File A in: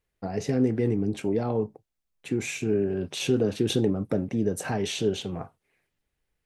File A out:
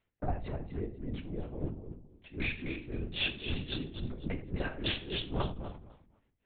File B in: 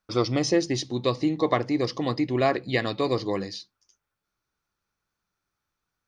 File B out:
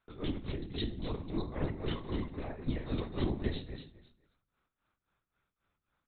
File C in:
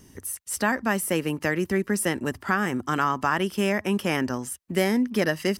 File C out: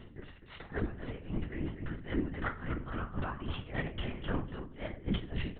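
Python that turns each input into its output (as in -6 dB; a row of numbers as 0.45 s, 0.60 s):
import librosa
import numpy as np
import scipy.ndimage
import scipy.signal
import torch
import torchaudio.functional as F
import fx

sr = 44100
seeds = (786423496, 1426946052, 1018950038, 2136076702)

p1 = fx.octave_divider(x, sr, octaves=1, level_db=-5.0)
p2 = scipy.signal.sosfilt(scipy.signal.butter(2, 49.0, 'highpass', fs=sr, output='sos'), p1)
p3 = fx.dynamic_eq(p2, sr, hz=160.0, q=0.82, threshold_db=-35.0, ratio=4.0, max_db=5)
p4 = fx.over_compress(p3, sr, threshold_db=-31.0, ratio=-1.0)
p5 = p4 * (1.0 - 0.92 / 2.0 + 0.92 / 2.0 * np.cos(2.0 * np.pi * 3.7 * (np.arange(len(p4)) / sr)))
p6 = p5 + fx.echo_feedback(p5, sr, ms=249, feedback_pct=18, wet_db=-9, dry=0)
p7 = fx.room_shoebox(p6, sr, seeds[0], volume_m3=52.0, walls='mixed', distance_m=0.34)
p8 = fx.lpc_vocoder(p7, sr, seeds[1], excitation='whisper', order=10)
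y = F.gain(torch.from_numpy(p8), -4.0).numpy()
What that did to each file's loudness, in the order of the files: -10.0 LU, -12.0 LU, -13.0 LU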